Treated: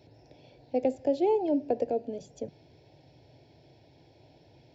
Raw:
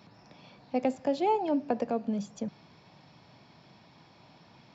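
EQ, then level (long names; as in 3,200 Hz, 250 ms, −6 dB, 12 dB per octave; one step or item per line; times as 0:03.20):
tilt shelving filter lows +6.5 dB, about 660 Hz
phaser with its sweep stopped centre 480 Hz, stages 4
+2.0 dB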